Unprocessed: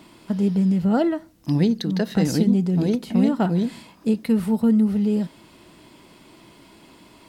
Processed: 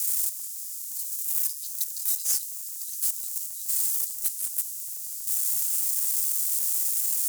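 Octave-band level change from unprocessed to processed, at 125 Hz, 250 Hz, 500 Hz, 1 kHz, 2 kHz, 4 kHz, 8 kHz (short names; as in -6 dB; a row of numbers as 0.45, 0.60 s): under -40 dB, under -40 dB, under -35 dB, under -20 dB, under -10 dB, -1.0 dB, +18.5 dB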